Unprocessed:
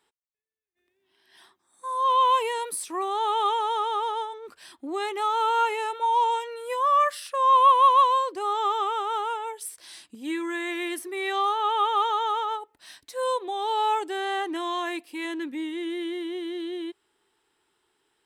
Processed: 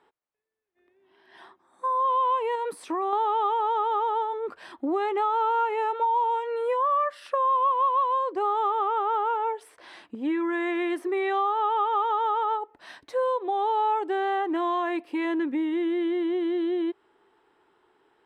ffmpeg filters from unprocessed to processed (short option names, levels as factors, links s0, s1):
-filter_complex "[0:a]asettb=1/sr,asplit=3[s0][s1][s2];[s0]atrim=end=2.554[s3];[s1]atrim=start=2.55:end=3.13,asetpts=PTS-STARTPTS,afade=t=in:d=0.004:c=qsin,afade=t=out:st=0.576:d=0.004:c=qsin,acompressor=threshold=0.0282:ratio=6:attack=3.2:release=140:knee=1:detection=peak[s4];[s2]atrim=start=3.126[s5];[s3][s4]acrossfade=d=0.004:c1=hsin:c2=qsin[s6];[s6][s5]acrossfade=d=0.004:c1=qsin:c2=hsin,asettb=1/sr,asplit=3[s7][s8][s9];[s7]atrim=end=8.704[s10];[s8]atrim=start=8.7:end=10.53,asetpts=PTS-STARTPTS,afade=t=in:d=0.004:c=qsin,afade=t=out:st=1.826:d=0.004:c=qsin,bass=f=250:g=-2,treble=f=4000:g=-7[s11];[s9]atrim=start=10.526[s12];[s10][s11]acrossfade=d=0.004:c1=hsin:c2=qsin[s13];[s13][s12]acrossfade=d=0.004:c1=qsin:c2=hsin,lowpass=f=1500:p=1,equalizer=f=720:w=0.3:g=9.5,acompressor=threshold=0.0447:ratio=4,volume=1.33"